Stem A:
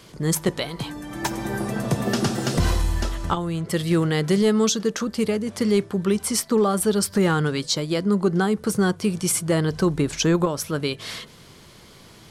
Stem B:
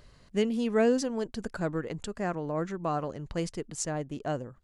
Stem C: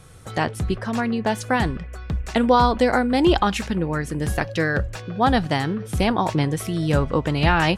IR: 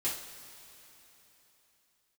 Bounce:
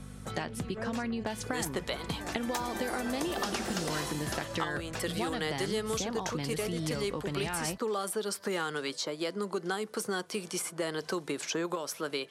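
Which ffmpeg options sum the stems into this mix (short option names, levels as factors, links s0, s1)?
-filter_complex "[0:a]highpass=400,adelay=1300,volume=0.668[s0];[1:a]volume=0.237[s1];[2:a]volume=0.708[s2];[s1][s2]amix=inputs=2:normalize=0,aeval=exprs='val(0)+0.0126*(sin(2*PI*50*n/s)+sin(2*PI*2*50*n/s)/2+sin(2*PI*3*50*n/s)/3+sin(2*PI*4*50*n/s)/4+sin(2*PI*5*50*n/s)/5)':c=same,acompressor=threshold=0.0447:ratio=6,volume=1[s3];[s0][s3]amix=inputs=2:normalize=0,acrossover=split=120|2100[s4][s5][s6];[s4]acompressor=threshold=0.00251:ratio=4[s7];[s5]acompressor=threshold=0.0282:ratio=4[s8];[s6]acompressor=threshold=0.0158:ratio=4[s9];[s7][s8][s9]amix=inputs=3:normalize=0"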